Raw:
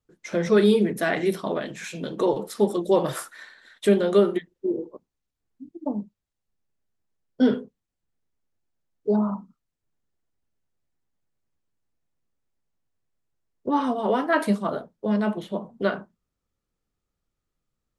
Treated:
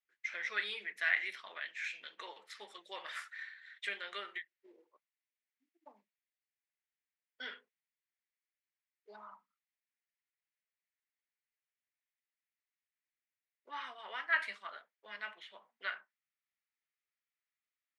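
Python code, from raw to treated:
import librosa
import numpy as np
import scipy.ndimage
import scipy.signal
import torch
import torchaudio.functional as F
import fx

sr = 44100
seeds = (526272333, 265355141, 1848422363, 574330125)

y = fx.ladder_bandpass(x, sr, hz=2300.0, resonance_pct=55)
y = y * 10.0 ** (5.0 / 20.0)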